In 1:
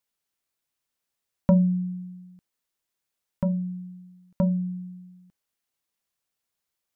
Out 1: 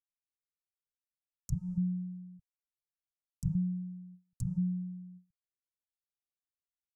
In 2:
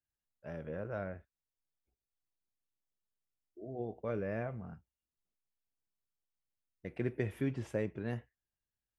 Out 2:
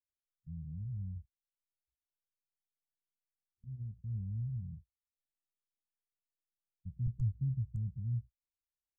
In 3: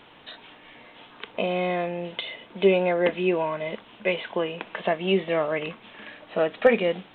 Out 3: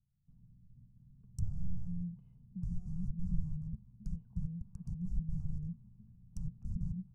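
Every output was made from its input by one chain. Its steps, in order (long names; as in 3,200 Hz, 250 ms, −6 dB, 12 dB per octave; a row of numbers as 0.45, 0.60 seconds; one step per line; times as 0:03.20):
noise gate with hold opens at −39 dBFS
low-pass that shuts in the quiet parts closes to 310 Hz, open at −22 dBFS
wrap-around overflow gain 23 dB
treble cut that deepens with the level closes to 660 Hz, closed at −30.5 dBFS
inverse Chebyshev band-stop filter 300–3,700 Hz, stop band 40 dB
low-shelf EQ 140 Hz +9 dB
level +2 dB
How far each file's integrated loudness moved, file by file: −9.5, 0.0, −17.0 LU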